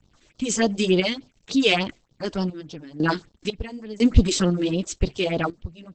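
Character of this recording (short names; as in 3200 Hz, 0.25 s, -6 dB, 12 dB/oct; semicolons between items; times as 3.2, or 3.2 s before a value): a quantiser's noise floor 10-bit, dither none; phasing stages 4, 3.4 Hz, lowest notch 120–2200 Hz; random-step tremolo 2 Hz, depth 90%; Opus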